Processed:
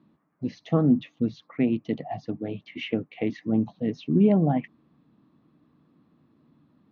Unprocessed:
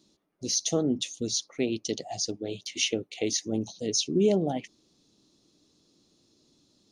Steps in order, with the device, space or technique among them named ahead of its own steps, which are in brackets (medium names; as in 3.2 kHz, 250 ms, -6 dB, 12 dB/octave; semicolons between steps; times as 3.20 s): bass cabinet (cabinet simulation 62–2100 Hz, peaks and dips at 150 Hz +8 dB, 240 Hz +5 dB, 390 Hz -8 dB, 550 Hz -4 dB, 1.1 kHz +7 dB, 1.7 kHz +3 dB); trim +4.5 dB